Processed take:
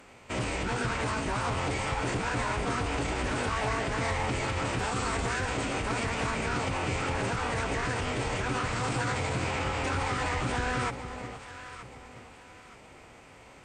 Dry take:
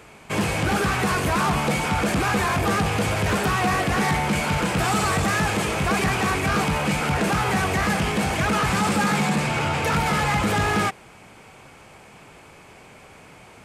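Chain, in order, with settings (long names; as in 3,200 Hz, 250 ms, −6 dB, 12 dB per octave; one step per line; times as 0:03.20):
mains-hum notches 60/120/180/240 Hz
brickwall limiter −18 dBFS, peak gain reduction 5 dB
tuned comb filter 470 Hz, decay 0.57 s, mix 40%
delay that swaps between a low-pass and a high-pass 463 ms, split 890 Hz, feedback 57%, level −7.5 dB
phase-vocoder pitch shift with formants kept −9 semitones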